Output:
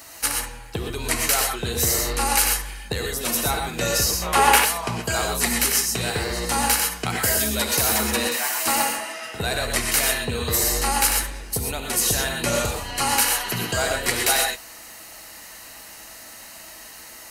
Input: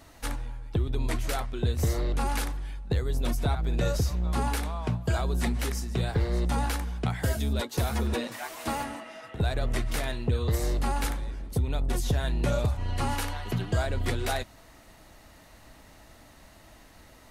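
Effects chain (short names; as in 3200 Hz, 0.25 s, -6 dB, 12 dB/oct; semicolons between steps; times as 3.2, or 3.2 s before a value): tilt +3.5 dB/oct; notch 3500 Hz, Q 6.9; non-linear reverb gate 0.15 s rising, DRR 1.5 dB; spectral gain 4.22–4.65, 340–3800 Hz +8 dB; gain +7 dB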